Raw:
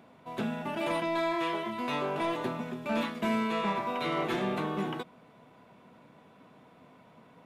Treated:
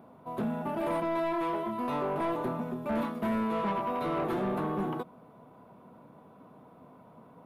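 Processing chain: band shelf 3700 Hz -12.5 dB 2.6 oct; in parallel at -6.5 dB: sine folder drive 7 dB, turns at -20.5 dBFS; on the sum: gain -5.5 dB

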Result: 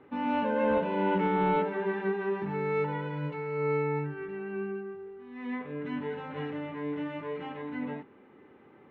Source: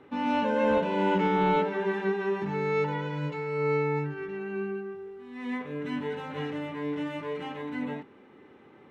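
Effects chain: LPF 2700 Hz 12 dB/oct; gain -2 dB

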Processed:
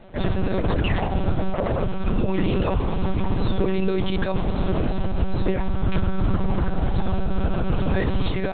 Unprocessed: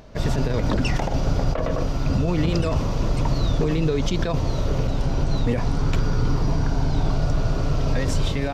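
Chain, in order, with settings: monotone LPC vocoder at 8 kHz 190 Hz

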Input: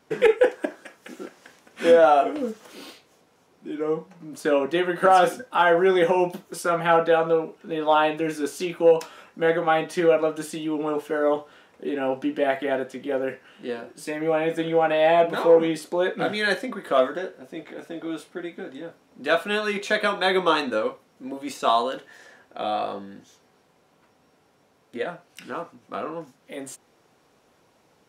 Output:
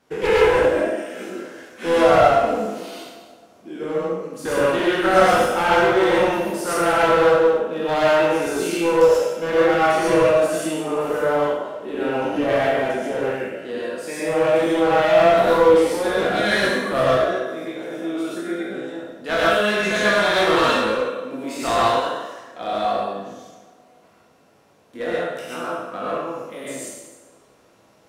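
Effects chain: spectral trails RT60 1.11 s; one-sided clip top -21 dBFS; tape echo 0.265 s, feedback 61%, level -20.5 dB, low-pass 1600 Hz; non-linear reverb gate 0.16 s rising, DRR -5.5 dB; gain -4 dB

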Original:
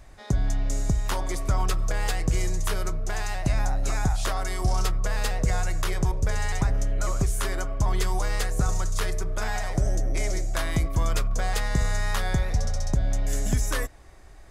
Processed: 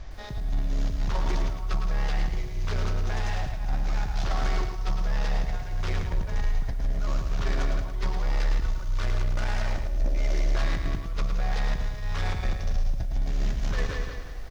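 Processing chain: CVSD 32 kbps; feedback echo 0.181 s, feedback 37%, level -8 dB; negative-ratio compressor -27 dBFS, ratio -0.5; 8.25–10.55 comb 3.4 ms, depth 55%; soft clip -26.5 dBFS, distortion -11 dB; low shelf 75 Hz +9 dB; lo-fi delay 0.109 s, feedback 35%, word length 9-bit, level -6.5 dB

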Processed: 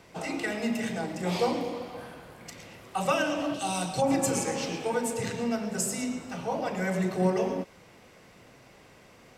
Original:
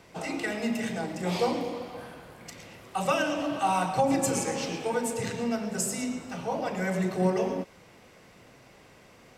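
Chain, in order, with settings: 3.54–4.02 ten-band EQ 1000 Hz -10 dB, 2000 Hz -5 dB, 4000 Hz +6 dB, 8000 Hz +7 dB

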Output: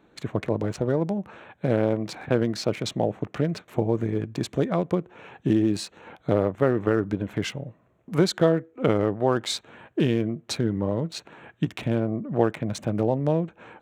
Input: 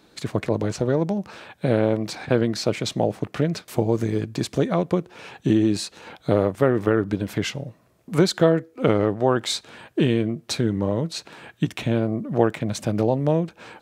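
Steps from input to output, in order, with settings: Wiener smoothing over 9 samples; gain -2.5 dB

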